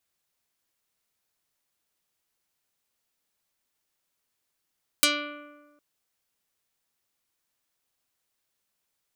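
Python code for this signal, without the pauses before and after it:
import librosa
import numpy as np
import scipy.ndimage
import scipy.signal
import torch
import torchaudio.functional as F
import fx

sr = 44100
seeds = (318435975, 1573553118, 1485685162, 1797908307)

y = fx.pluck(sr, length_s=0.76, note=62, decay_s=1.36, pick=0.34, brightness='dark')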